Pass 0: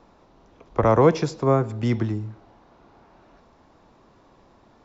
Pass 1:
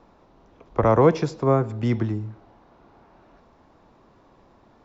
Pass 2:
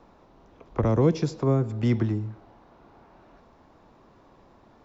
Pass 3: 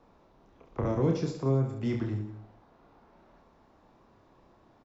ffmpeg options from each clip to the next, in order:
-af "highshelf=f=4k:g=-6"
-filter_complex "[0:a]acrossover=split=390|3000[a][b][c];[b]acompressor=threshold=-33dB:ratio=4[d];[a][d][c]amix=inputs=3:normalize=0"
-af "aecho=1:1:30|69|119.7|185.6|271.3:0.631|0.398|0.251|0.158|0.1,volume=-7.5dB"

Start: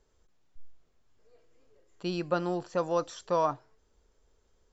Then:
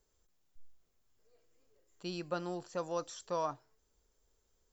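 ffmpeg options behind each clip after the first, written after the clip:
-af "aemphasis=mode=production:type=50fm,volume=-8dB"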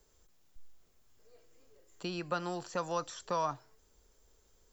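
-filter_complex "[0:a]acrossover=split=200|800|2500[a][b][c][d];[a]acompressor=threshold=-54dB:ratio=4[e];[b]acompressor=threshold=-49dB:ratio=4[f];[c]acompressor=threshold=-40dB:ratio=4[g];[d]acompressor=threshold=-56dB:ratio=4[h];[e][f][g][h]amix=inputs=4:normalize=0,volume=8.5dB"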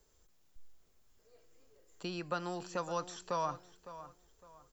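-filter_complex "[0:a]asplit=2[a][b];[b]adelay=558,lowpass=f=4.2k:p=1,volume=-14dB,asplit=2[c][d];[d]adelay=558,lowpass=f=4.2k:p=1,volume=0.31,asplit=2[e][f];[f]adelay=558,lowpass=f=4.2k:p=1,volume=0.31[g];[a][c][e][g]amix=inputs=4:normalize=0,volume=-2dB"

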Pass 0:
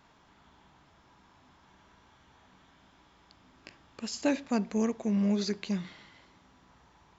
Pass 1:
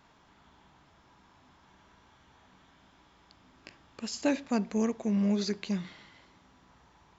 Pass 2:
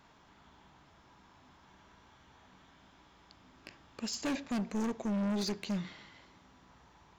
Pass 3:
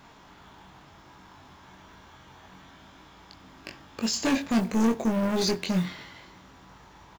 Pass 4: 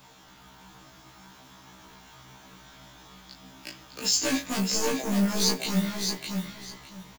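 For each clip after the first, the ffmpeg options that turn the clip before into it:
-af anull
-af "asoftclip=type=hard:threshold=-30.5dB"
-filter_complex "[0:a]acrusher=bits=6:mode=log:mix=0:aa=0.000001,asplit=2[a][b];[b]adelay=22,volume=-5dB[c];[a][c]amix=inputs=2:normalize=0,volume=8.5dB"
-filter_complex "[0:a]aecho=1:1:609|1218|1827:0.562|0.118|0.0248,acrossover=split=310|1100[a][b][c];[c]crystalizer=i=2.5:c=0[d];[a][b][d]amix=inputs=3:normalize=0,afftfilt=real='re*1.73*eq(mod(b,3),0)':imag='im*1.73*eq(mod(b,3),0)':win_size=2048:overlap=0.75"

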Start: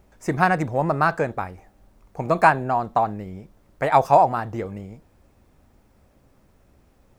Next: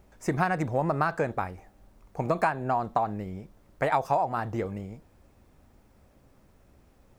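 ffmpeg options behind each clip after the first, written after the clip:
-af "acompressor=threshold=-20dB:ratio=6,volume=-1.5dB"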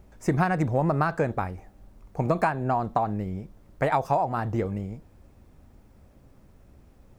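-af "lowshelf=f=340:g=6.5"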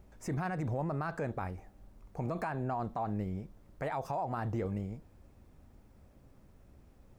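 -af "alimiter=limit=-21.5dB:level=0:latency=1:release=58,volume=-5dB"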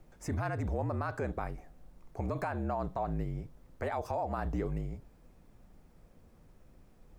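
-af "afreqshift=-46,volume=1dB"

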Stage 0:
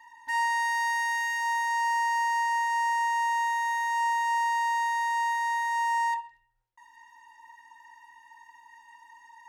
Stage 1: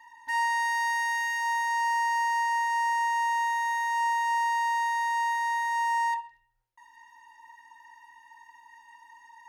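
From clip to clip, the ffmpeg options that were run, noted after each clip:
-af "bandreject=f=7.6k:w=15"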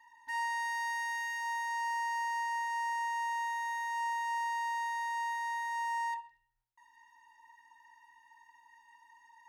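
-af "equalizer=f=520:w=4.5:g=-13,volume=-7.5dB"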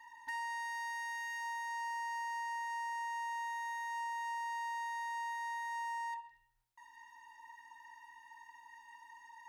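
-af "acompressor=threshold=-46dB:ratio=3,volume=4.5dB"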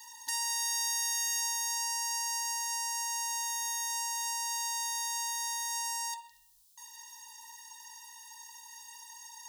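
-af "aexciter=amount=15.5:drive=3.4:freq=3.3k"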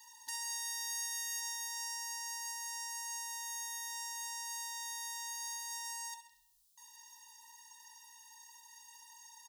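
-af "aecho=1:1:66|132|198|264:0.282|0.116|0.0474|0.0194,volume=-7.5dB"

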